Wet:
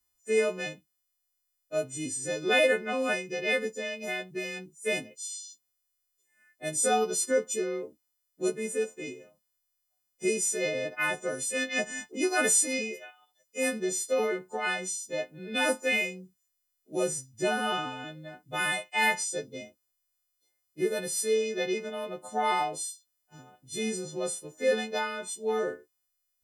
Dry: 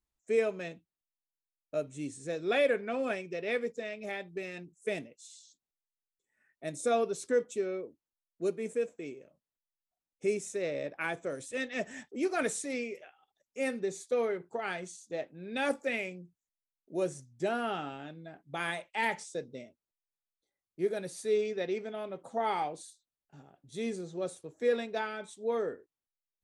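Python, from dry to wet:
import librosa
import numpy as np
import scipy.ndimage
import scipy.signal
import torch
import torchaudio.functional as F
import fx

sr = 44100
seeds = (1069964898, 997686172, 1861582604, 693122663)

y = fx.freq_snap(x, sr, grid_st=3)
y = y * 10.0 ** (3.0 / 20.0)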